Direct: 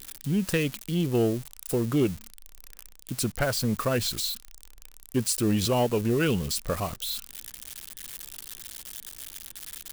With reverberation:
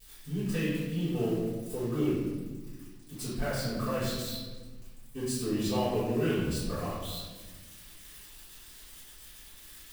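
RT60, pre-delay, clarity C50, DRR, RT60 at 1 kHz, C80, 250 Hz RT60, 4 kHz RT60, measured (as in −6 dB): 1.4 s, 3 ms, −1.5 dB, −15.5 dB, 1.2 s, 1.5 dB, 2.0 s, 0.85 s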